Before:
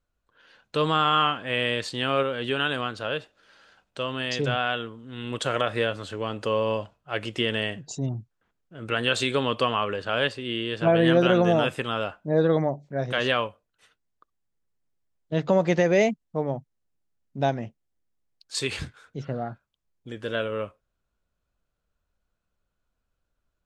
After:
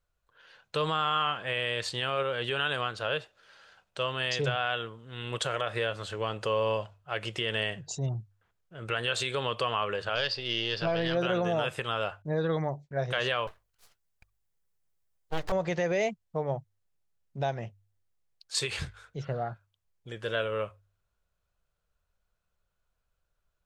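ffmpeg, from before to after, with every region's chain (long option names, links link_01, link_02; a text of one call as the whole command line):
ffmpeg -i in.wav -filter_complex "[0:a]asettb=1/sr,asplit=3[link_01][link_02][link_03];[link_01]atrim=end=10.154[link_04];[link_02]atrim=start=10.15:end=11.15,asetpts=PTS-STARTPTS,afade=type=in:duration=0.004:curve=qsin,afade=type=out:start_time=0.996:duration=0.004:curve=qsin,aeval=exprs='if(lt(val(0),0),0.708*val(0),val(0))':channel_layout=same,lowpass=frequency=4900:width_type=q:width=8[link_05];[link_03]atrim=start=11.146[link_06];[link_04][link_05]acrossfade=duration=0.004:curve1=hsin:curve2=qsin[link_07];[link_07][link_06]acrossfade=duration=0.004:curve1=qsin:curve2=hsin,asettb=1/sr,asplit=3[link_08][link_09][link_10];[link_08]atrim=end=12.224[link_11];[link_09]atrim=start=12.22:end=12.97,asetpts=PTS-STARTPTS,afade=type=in:duration=0.004:curve=qsin,afade=type=out:start_time=0.746:duration=0.004:curve=qsin,agate=range=-33dB:threshold=-48dB:ratio=3:release=100:detection=peak,equalizer=frequency=610:width_type=o:width=0.72:gain=-6.5[link_12];[link_10]atrim=start=12.966[link_13];[link_11][link_12]acrossfade=duration=0.004:curve1=hsin:curve2=qsin[link_14];[link_14][link_13]acrossfade=duration=0.004:curve1=qsin:curve2=hsin,asettb=1/sr,asplit=3[link_15][link_16][link_17];[link_15]atrim=end=13.474[link_18];[link_16]atrim=start=13.47:end=15.52,asetpts=PTS-STARTPTS,afade=type=in:duration=0.004:curve=qsin,afade=type=out:start_time=2.046:duration=0.004:curve=qsin,aeval=exprs='abs(val(0))':channel_layout=same,highshelf=frequency=8200:gain=8[link_19];[link_17]atrim=start=15.516[link_20];[link_18][link_19]acrossfade=duration=0.004:curve1=hsin:curve2=qsin[link_21];[link_21][link_20]acrossfade=duration=0.004:curve1=qsin:curve2=hsin,alimiter=limit=-16.5dB:level=0:latency=1:release=132,equalizer=frequency=260:width=2.2:gain=-13,bandreject=frequency=49.7:width_type=h:width=4,bandreject=frequency=99.4:width_type=h:width=4" out.wav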